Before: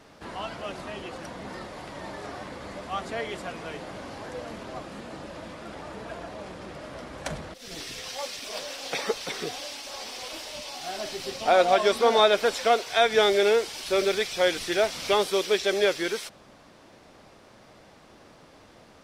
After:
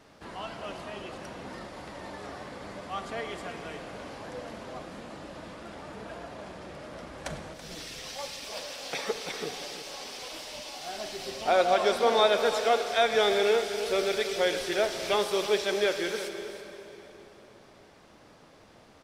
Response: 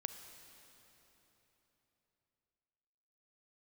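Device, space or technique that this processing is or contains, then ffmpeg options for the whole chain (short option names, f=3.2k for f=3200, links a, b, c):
cave: -filter_complex "[0:a]aecho=1:1:330:0.237[a];[1:a]atrim=start_sample=2205[b];[a][b]afir=irnorm=-1:irlink=0,volume=-1.5dB"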